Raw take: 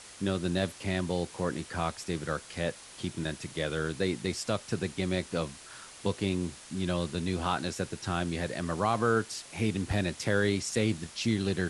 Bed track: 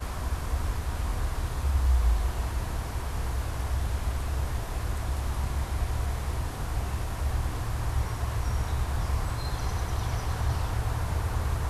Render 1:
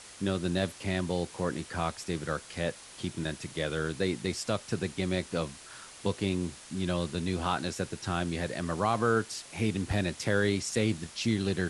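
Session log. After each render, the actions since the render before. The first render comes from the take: nothing audible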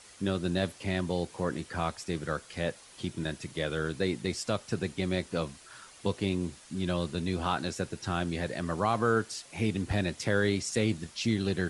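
denoiser 6 dB, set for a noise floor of -50 dBFS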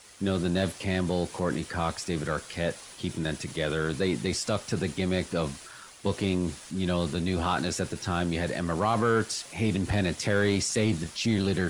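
transient shaper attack -1 dB, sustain +5 dB; sample leveller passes 1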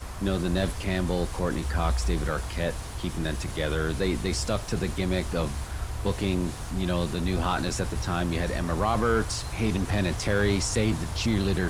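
add bed track -4 dB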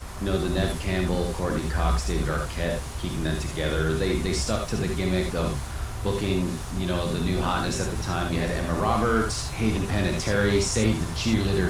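non-linear reverb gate 0.1 s rising, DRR 2.5 dB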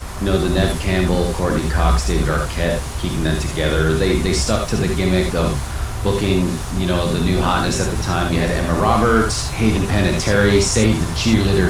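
gain +8 dB; limiter -3 dBFS, peak gain reduction 2 dB

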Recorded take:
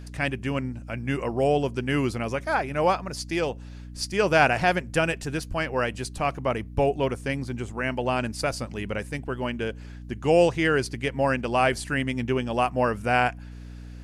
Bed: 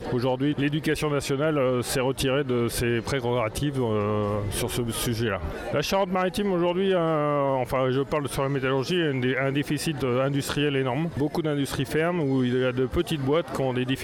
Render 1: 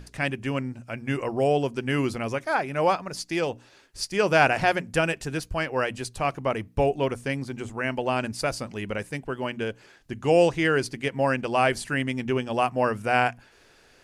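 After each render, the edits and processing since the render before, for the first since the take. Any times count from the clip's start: notches 60/120/180/240/300 Hz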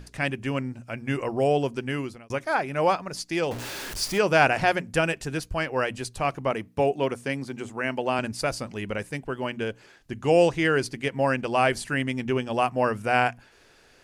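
1.73–2.3 fade out; 3.51–4.19 zero-crossing step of -30 dBFS; 6.51–8.19 HPF 140 Hz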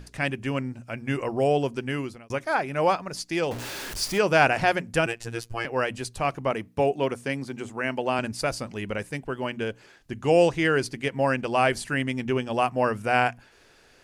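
5.06–5.65 robotiser 116 Hz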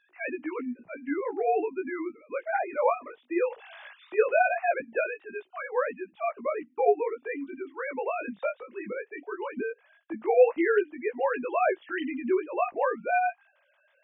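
sine-wave speech; chorus 0.17 Hz, delay 16 ms, depth 4.1 ms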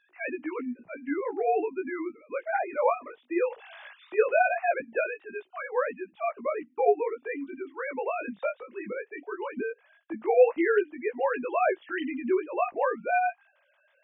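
nothing audible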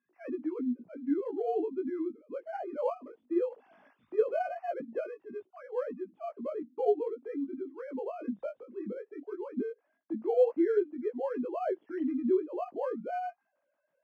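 in parallel at -8 dB: sample-and-hold 12×; on the sum: band-pass 240 Hz, Q 1.4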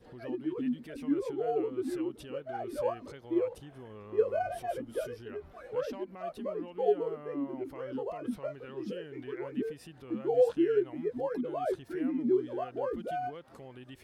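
add bed -23 dB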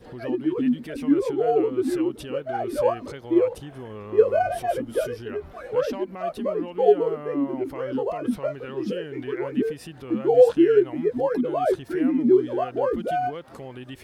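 gain +10 dB

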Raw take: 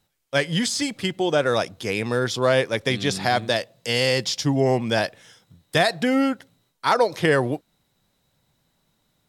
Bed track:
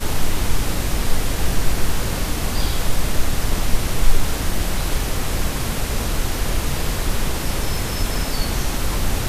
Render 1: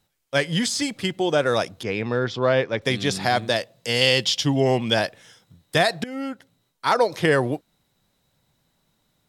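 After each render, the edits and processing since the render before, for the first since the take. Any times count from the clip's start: 1.83–2.82 air absorption 180 m; 4.01–4.94 bell 3100 Hz +11 dB 0.49 oct; 6.04–7.19 fade in equal-power, from -18 dB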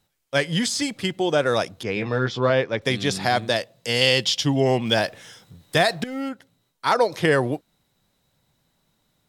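1.95–2.5 doubler 15 ms -5 dB; 4.85–6.29 G.711 law mismatch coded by mu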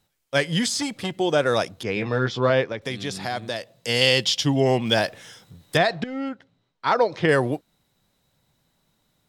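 0.66–1.12 core saturation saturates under 910 Hz; 2.72–3.76 compressor 1.5:1, threshold -36 dBFS; 5.77–7.29 air absorption 140 m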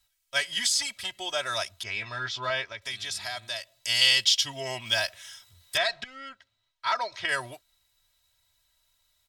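passive tone stack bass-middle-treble 10-0-10; comb 3.1 ms, depth 86%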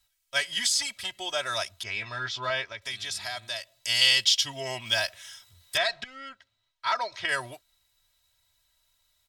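nothing audible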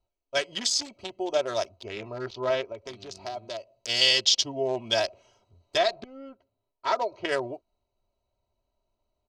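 Wiener smoothing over 25 samples; EQ curve 130 Hz 0 dB, 390 Hz +14 dB, 1600 Hz -3 dB, 6400 Hz +3 dB, 9800 Hz -12 dB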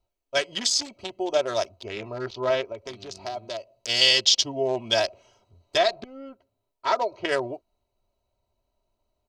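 gain +2.5 dB

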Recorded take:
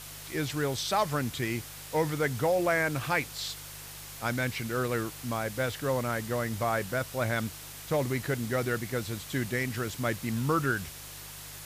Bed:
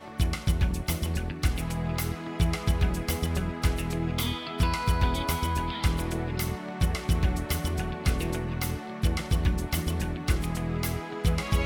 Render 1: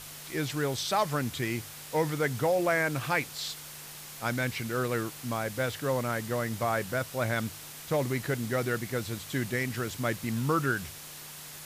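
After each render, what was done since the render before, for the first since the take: de-hum 50 Hz, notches 2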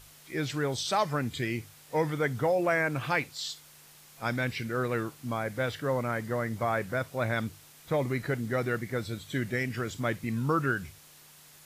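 noise print and reduce 10 dB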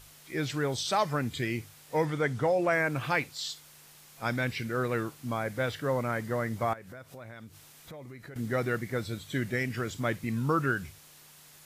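2.05–2.73 LPF 9500 Hz; 6.73–8.36 compressor 5:1, threshold -44 dBFS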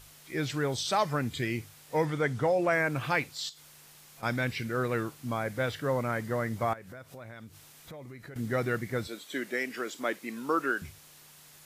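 3.49–4.23 compressor 5:1, threshold -47 dBFS; 9.07–10.82 HPF 270 Hz 24 dB/oct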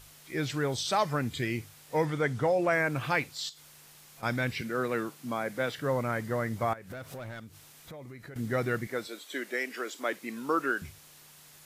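4.61–5.78 HPF 150 Hz 24 dB/oct; 6.9–7.4 sample leveller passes 2; 8.87–10.13 HPF 290 Hz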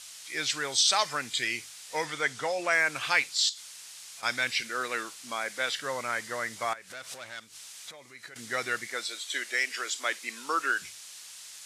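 weighting filter ITU-R 468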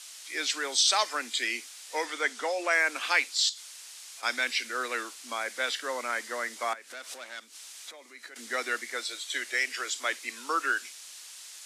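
steep high-pass 230 Hz 72 dB/oct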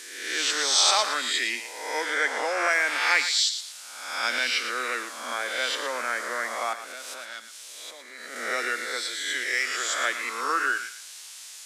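spectral swells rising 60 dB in 0.96 s; on a send: thinning echo 0.114 s, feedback 29%, high-pass 1100 Hz, level -9 dB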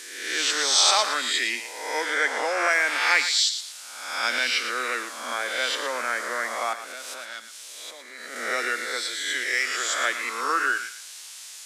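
gain +1.5 dB

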